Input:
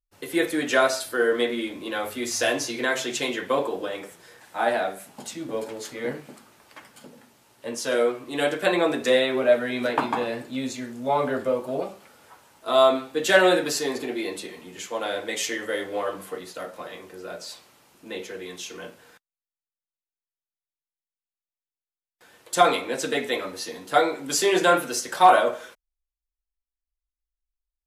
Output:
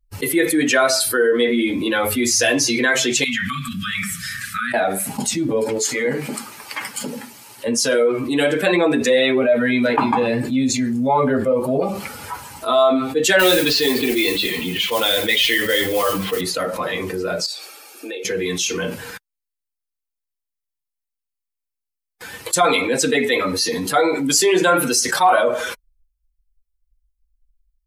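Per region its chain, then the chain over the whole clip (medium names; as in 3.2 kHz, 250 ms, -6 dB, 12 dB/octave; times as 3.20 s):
3.24–4.74 s: compression 4:1, threshold -32 dBFS + brick-wall FIR band-stop 260–1100 Hz
5.78–7.68 s: high-pass 320 Hz 6 dB/octave + dynamic bell 7.1 kHz, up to +5 dB, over -57 dBFS
13.39–16.41 s: resonant low-pass 3.5 kHz, resonance Q 2.4 + modulation noise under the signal 10 dB
17.46–18.25 s: high-pass 340 Hz 24 dB/octave + compression 5:1, threshold -49 dBFS + comb of notches 1 kHz
whole clip: expander on every frequency bin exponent 1.5; level flattener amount 70%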